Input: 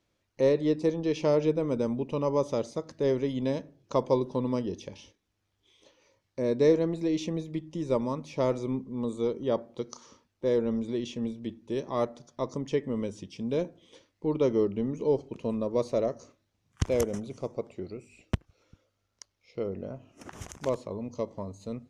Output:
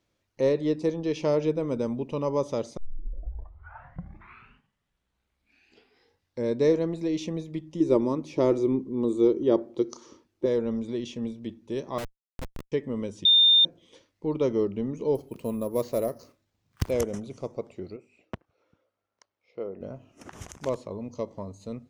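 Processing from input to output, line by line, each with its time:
2.77 s: tape start 3.83 s
7.80–10.46 s: peaking EQ 340 Hz +15 dB 0.51 oct
11.98–12.72 s: Schmitt trigger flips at -26 dBFS
13.25–13.65 s: bleep 3.62 kHz -14.5 dBFS
15.15–16.91 s: careless resampling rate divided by 4×, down none, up hold
17.96–19.81 s: band-pass filter 760 Hz, Q 0.6

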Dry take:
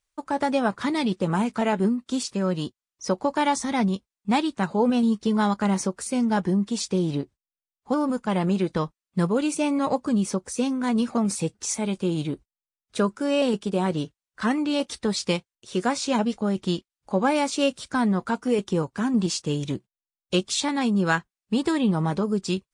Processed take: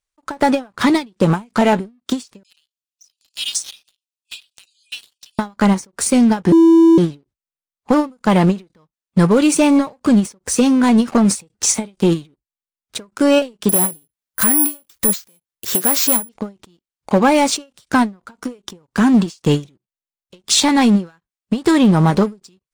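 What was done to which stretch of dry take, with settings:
2.43–5.39 s: brick-wall FIR high-pass 2.4 kHz
6.52–6.98 s: bleep 330 Hz -13 dBFS
13.69–16.29 s: careless resampling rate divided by 4×, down none, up zero stuff
whole clip: compression 2:1, threshold -24 dBFS; waveshaping leveller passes 3; endings held to a fixed fall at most 250 dB/s; trim +3 dB

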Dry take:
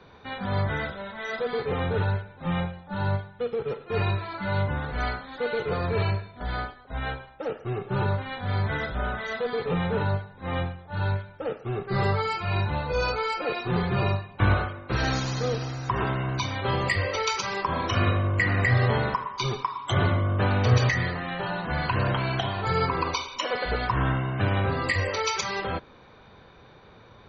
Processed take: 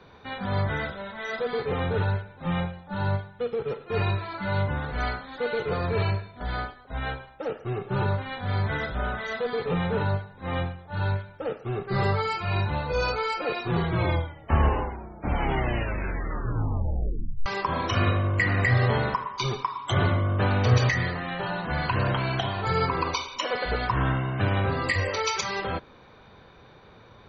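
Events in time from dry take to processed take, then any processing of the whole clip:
13.62 s: tape stop 3.84 s

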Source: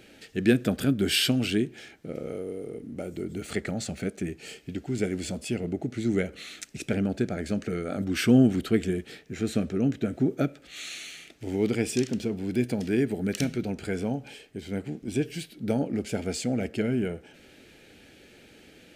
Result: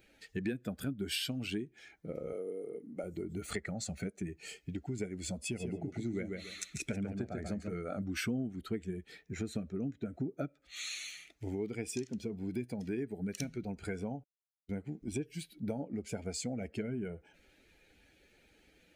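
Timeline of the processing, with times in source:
2.33–3.04 s: high-pass 180 Hz
5.40–7.73 s: feedback delay 141 ms, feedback 25%, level -4.5 dB
14.24–14.69 s: mute
whole clip: expander on every frequency bin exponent 1.5; compression 5:1, threshold -41 dBFS; trim +5.5 dB

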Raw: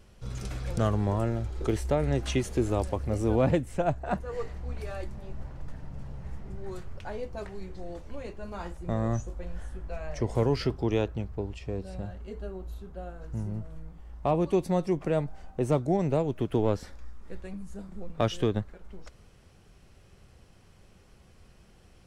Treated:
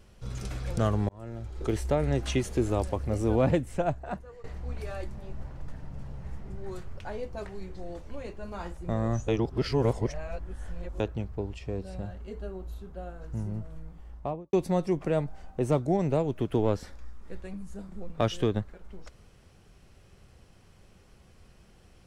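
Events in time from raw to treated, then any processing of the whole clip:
1.09–1.79 s: fade in
3.78–4.44 s: fade out, to -21 dB
9.28–11.00 s: reverse
14.05–14.53 s: studio fade out

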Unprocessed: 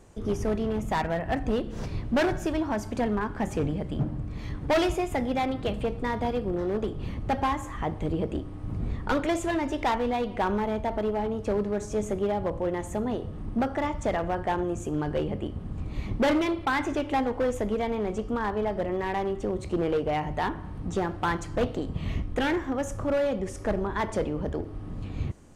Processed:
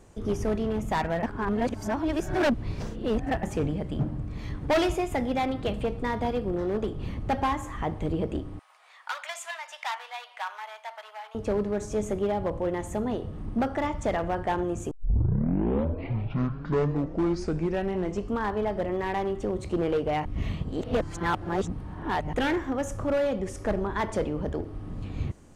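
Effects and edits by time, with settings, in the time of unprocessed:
1.23–3.43 s: reverse
8.59–11.35 s: Bessel high-pass 1.3 kHz, order 8
14.91 s: tape start 3.51 s
20.25–22.33 s: reverse

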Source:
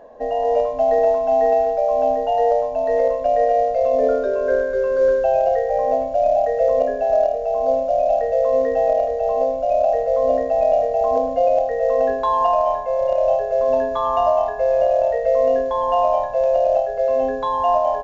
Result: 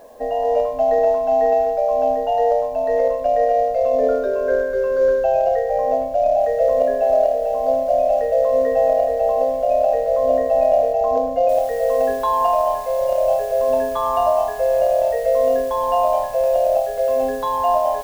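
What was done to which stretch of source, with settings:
6.18–10.93 s: bit-crushed delay 218 ms, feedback 55%, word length 7-bit, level -11 dB
11.49 s: noise floor step -60 dB -44 dB

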